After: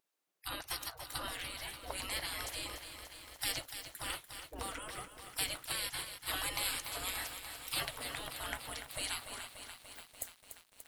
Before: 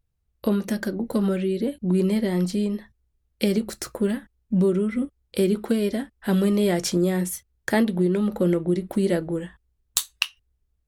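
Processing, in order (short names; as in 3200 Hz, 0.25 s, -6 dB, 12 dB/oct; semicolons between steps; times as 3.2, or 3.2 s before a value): spectral gate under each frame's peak -30 dB weak; lo-fi delay 0.291 s, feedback 80%, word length 10-bit, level -9 dB; gain +3.5 dB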